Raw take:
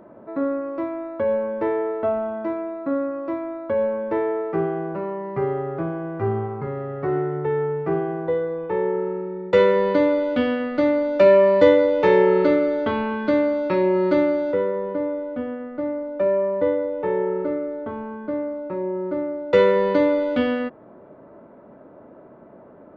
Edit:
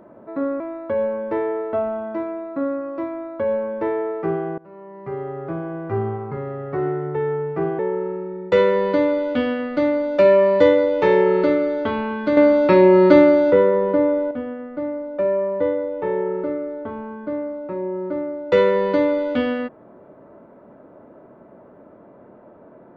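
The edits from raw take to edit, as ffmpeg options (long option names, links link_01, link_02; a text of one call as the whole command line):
ffmpeg -i in.wav -filter_complex "[0:a]asplit=6[link_01][link_02][link_03][link_04][link_05][link_06];[link_01]atrim=end=0.602[link_07];[link_02]atrim=start=0.898:end=4.88,asetpts=PTS-STARTPTS,afade=type=out:start_time=3.978:duration=0.004:curve=hsin:silence=0.0749894[link_08];[link_03]atrim=start=4.88:end=8.092,asetpts=PTS-STARTPTS,afade=type=in:duration=1.13:silence=0.0749894[link_09];[link_04]atrim=start=8.798:end=13.382[link_10];[link_05]atrim=start=13.378:end=15.322,asetpts=PTS-STARTPTS,volume=7.5dB[link_11];[link_06]atrim=start=15.318[link_12];[link_08][link_09]concat=n=2:v=0:a=1[link_13];[link_07][link_13]acrossfade=duration=0.004:curve1=hsin:curve2=hsin[link_14];[link_14][link_10]acrossfade=duration=0.004:curve1=hsin:curve2=hsin[link_15];[link_15][link_11]acrossfade=duration=0.004:curve1=hsin:curve2=hsin[link_16];[link_16][link_12]acrossfade=duration=0.004:curve1=hsin:curve2=hsin" out.wav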